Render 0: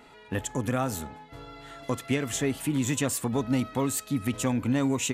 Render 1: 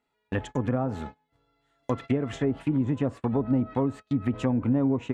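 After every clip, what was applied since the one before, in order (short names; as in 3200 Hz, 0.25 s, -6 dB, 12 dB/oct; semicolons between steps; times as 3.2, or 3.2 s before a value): treble ducked by the level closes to 760 Hz, closed at -22.5 dBFS; gate -38 dBFS, range -28 dB; gain +2 dB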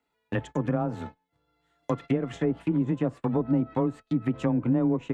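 transient shaper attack 0 dB, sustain -4 dB; frequency shift +17 Hz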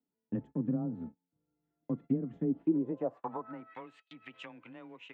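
band-pass sweep 220 Hz -> 2800 Hz, 2.45–3.91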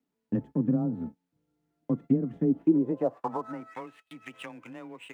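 median filter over 9 samples; gain +6.5 dB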